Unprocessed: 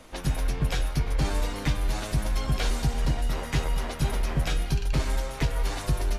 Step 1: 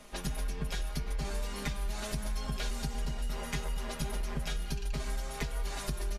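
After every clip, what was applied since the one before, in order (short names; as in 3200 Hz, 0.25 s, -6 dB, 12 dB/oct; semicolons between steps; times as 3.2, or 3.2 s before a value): bell 8800 Hz +4 dB 2.1 oct; comb 4.9 ms, depth 73%; compressor, threshold -25 dBFS, peak gain reduction 7.5 dB; gain -5.5 dB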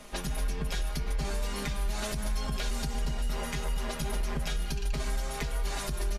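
limiter -27 dBFS, peak gain reduction 6.5 dB; gain +4.5 dB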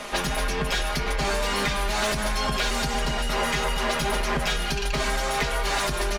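overdrive pedal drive 17 dB, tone 3200 Hz, clips at -22 dBFS; gain +7 dB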